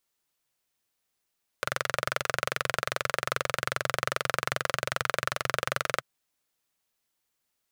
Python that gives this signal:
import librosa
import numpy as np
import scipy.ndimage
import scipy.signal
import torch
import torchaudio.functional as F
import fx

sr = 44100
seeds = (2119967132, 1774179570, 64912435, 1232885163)

y = fx.engine_single(sr, seeds[0], length_s=4.39, rpm=2700, resonances_hz=(130.0, 560.0, 1300.0))